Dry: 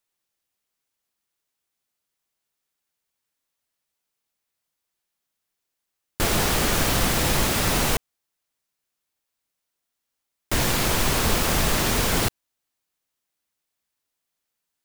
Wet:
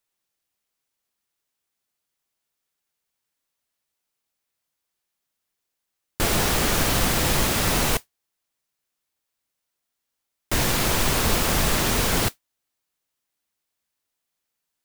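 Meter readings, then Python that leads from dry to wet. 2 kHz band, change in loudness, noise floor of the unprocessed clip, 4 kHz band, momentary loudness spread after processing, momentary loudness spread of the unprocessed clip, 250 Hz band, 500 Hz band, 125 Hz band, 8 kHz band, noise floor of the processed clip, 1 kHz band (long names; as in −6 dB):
0.0 dB, +0.5 dB, −82 dBFS, 0.0 dB, 4 LU, 4 LU, 0.0 dB, 0.0 dB, 0.0 dB, +0.5 dB, −82 dBFS, 0.0 dB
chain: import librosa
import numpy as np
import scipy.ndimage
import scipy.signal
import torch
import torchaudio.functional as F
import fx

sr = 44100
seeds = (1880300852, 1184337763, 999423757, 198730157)

y = fx.mod_noise(x, sr, seeds[0], snr_db=14)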